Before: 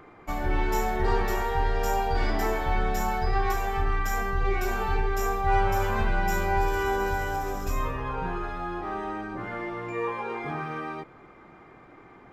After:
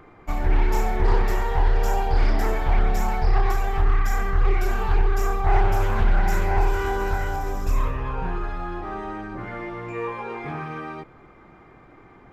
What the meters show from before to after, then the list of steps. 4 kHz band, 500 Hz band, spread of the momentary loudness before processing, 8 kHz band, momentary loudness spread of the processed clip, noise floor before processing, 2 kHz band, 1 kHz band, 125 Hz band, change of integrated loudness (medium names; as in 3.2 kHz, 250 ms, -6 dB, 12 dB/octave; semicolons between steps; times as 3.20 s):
0.0 dB, +0.5 dB, 8 LU, -0.5 dB, 10 LU, -51 dBFS, 0.0 dB, 0.0 dB, +6.0 dB, +3.0 dB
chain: bass shelf 110 Hz +9 dB; loudspeaker Doppler distortion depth 0.47 ms